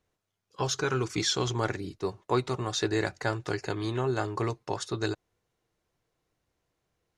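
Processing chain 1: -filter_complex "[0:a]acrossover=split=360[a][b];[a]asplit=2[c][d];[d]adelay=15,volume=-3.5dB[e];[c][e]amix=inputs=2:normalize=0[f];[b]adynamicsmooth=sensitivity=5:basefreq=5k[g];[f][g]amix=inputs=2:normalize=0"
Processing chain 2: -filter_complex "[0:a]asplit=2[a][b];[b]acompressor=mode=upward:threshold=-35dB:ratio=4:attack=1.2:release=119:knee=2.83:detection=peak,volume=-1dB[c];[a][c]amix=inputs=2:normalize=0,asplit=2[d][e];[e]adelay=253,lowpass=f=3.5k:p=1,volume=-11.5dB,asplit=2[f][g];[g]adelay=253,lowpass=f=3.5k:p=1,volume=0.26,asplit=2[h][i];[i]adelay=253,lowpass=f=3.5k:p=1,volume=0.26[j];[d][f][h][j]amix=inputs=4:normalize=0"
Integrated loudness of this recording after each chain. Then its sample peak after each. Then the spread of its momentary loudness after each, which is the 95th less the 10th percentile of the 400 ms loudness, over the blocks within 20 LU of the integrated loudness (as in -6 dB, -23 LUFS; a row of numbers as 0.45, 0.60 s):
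-30.5, -25.0 LUFS; -14.0, -6.0 dBFS; 6, 7 LU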